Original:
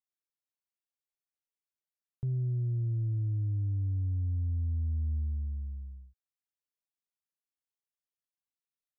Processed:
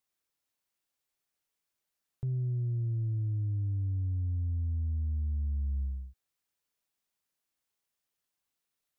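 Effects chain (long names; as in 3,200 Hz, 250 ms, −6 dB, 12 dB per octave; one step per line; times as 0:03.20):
brickwall limiter −37.5 dBFS, peak gain reduction 9.5 dB
level +9 dB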